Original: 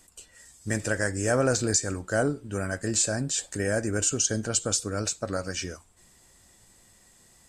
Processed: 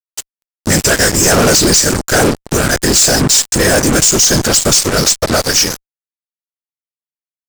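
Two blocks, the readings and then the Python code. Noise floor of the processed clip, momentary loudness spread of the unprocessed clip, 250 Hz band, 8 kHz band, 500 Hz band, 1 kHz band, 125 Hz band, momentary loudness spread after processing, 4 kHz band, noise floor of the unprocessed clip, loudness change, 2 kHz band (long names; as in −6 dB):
below −85 dBFS, 8 LU, +15.0 dB, +17.0 dB, +14.0 dB, +18.0 dB, +13.5 dB, 7 LU, +21.5 dB, −59 dBFS, +17.0 dB, +16.0 dB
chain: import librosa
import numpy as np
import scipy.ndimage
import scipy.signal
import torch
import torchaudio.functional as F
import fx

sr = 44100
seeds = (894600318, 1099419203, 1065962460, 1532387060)

y = fx.peak_eq(x, sr, hz=5200.0, db=13.0, octaves=1.2)
y = fx.whisperise(y, sr, seeds[0])
y = fx.fuzz(y, sr, gain_db=34.0, gate_db=-33.0)
y = F.gain(torch.from_numpy(y), 6.0).numpy()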